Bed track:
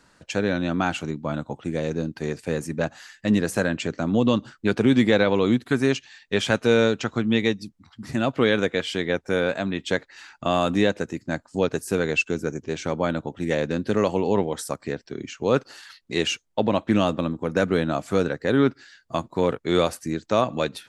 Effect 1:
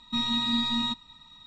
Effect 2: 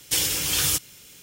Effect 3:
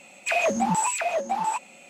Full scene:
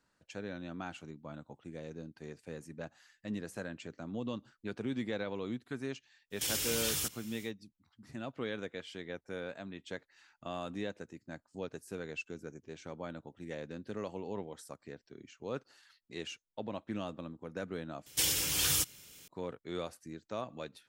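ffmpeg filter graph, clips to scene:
-filter_complex "[2:a]asplit=2[a][b];[0:a]volume=-18.5dB[c];[a]alimiter=limit=-19dB:level=0:latency=1:release=71[d];[c]asplit=2[e][f];[e]atrim=end=18.064[g];[b]atrim=end=1.22,asetpts=PTS-STARTPTS,volume=-7dB[h];[f]atrim=start=19.276[i];[d]atrim=end=1.22,asetpts=PTS-STARTPTS,volume=-5.5dB,afade=t=in:d=0.1,afade=t=out:st=1.12:d=0.1,adelay=6300[j];[g][h]acrossfade=d=0.004:c1=hsin:c2=hsin[k];[k][i]acrossfade=d=0.004:c1=hsin:c2=hsin[l];[l][j]amix=inputs=2:normalize=0"

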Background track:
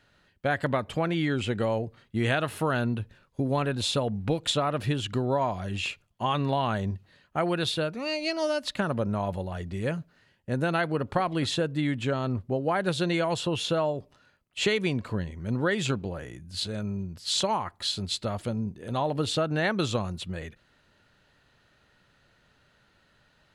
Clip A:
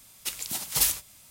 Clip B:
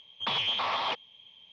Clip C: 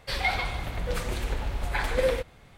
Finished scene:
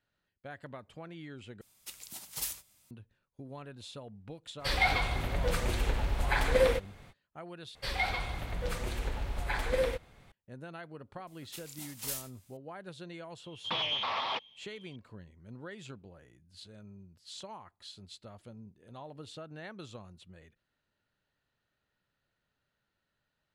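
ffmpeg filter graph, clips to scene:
-filter_complex "[1:a]asplit=2[a][b];[3:a]asplit=2[c][d];[0:a]volume=-19dB[e];[b]asplit=2[f][g];[g]adelay=28,volume=-4dB[h];[f][h]amix=inputs=2:normalize=0[i];[e]asplit=3[j][k][l];[j]atrim=end=1.614[m];[a]atrim=end=1.3,asetpts=PTS-STARTPTS,volume=-13dB[n];[k]atrim=start=2.906:end=7.754[o];[d]atrim=end=2.57,asetpts=PTS-STARTPTS,volume=-5dB[p];[l]atrim=start=10.316[q];[c]atrim=end=2.57,asetpts=PTS-STARTPTS,volume=-0.5dB,afade=t=in:d=0.05,afade=t=out:st=2.52:d=0.05,adelay=201537S[r];[i]atrim=end=1.3,asetpts=PTS-STARTPTS,volume=-15.5dB,afade=t=in:d=0.004:c=hsin,afade=t=out:st=1.296:d=0.004:c=hsin,adelay=11270[s];[2:a]atrim=end=1.52,asetpts=PTS-STARTPTS,volume=-3.5dB,afade=t=in:d=0.004:c=hsin,afade=t=out:st=1.516:d=0.004:c=hsin,adelay=13440[t];[m][n]acrossfade=d=0.004:c1=hsin:c2=hsin[u];[u][o]acrossfade=d=0.004:c1=hsin:c2=hsin[v];[v][p]acrossfade=d=0.004:c1=hsin:c2=hsin[w];[w][q]acrossfade=d=0.004:c1=hsin:c2=hsin[x];[x][r][s][t]amix=inputs=4:normalize=0"

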